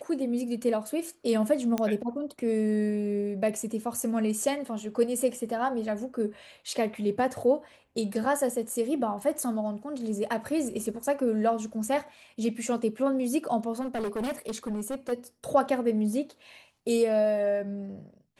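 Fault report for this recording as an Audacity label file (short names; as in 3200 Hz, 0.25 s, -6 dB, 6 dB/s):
1.780000	1.780000	pop -15 dBFS
13.800000	15.130000	clipped -28 dBFS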